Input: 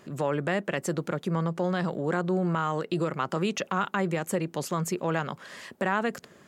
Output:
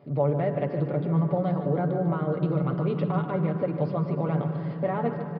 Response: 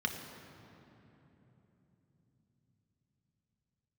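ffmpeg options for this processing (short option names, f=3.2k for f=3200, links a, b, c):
-filter_complex "[0:a]aemphasis=mode=reproduction:type=75fm,deesser=1,highshelf=f=2.3k:g=-5,aecho=1:1:7:0.66,atempo=1.2,aecho=1:1:149|298|447|596|745|894:0.282|0.152|0.0822|0.0444|0.024|0.0129,asplit=2[a][b];[1:a]atrim=start_sample=2205,asetrate=22932,aresample=44100,lowshelf=f=440:g=9[c];[b][c]afir=irnorm=-1:irlink=0,volume=-14dB[d];[a][d]amix=inputs=2:normalize=0,aresample=11025,aresample=44100,volume=-4dB"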